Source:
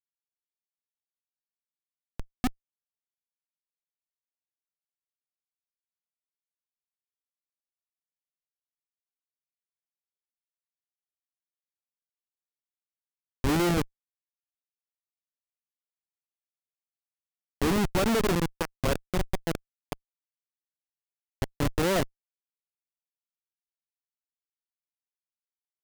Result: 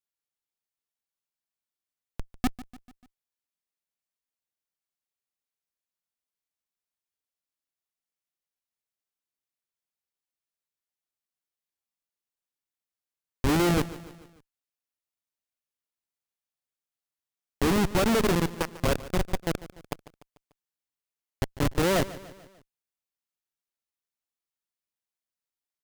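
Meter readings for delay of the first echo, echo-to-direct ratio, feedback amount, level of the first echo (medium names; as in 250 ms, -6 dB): 147 ms, -15.5 dB, 51%, -17.0 dB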